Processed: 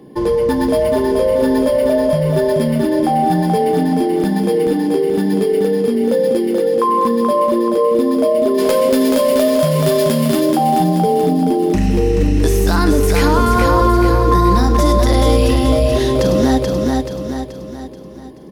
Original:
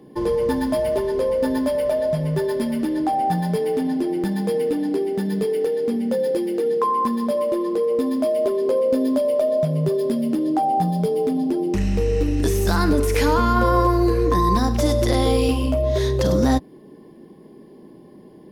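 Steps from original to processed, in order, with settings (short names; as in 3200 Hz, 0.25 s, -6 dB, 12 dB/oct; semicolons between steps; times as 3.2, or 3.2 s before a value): 8.57–10.4 spectral whitening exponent 0.6; feedback echo 0.431 s, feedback 46%, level -4.5 dB; in parallel at -1 dB: limiter -12.5 dBFS, peak gain reduction 7.5 dB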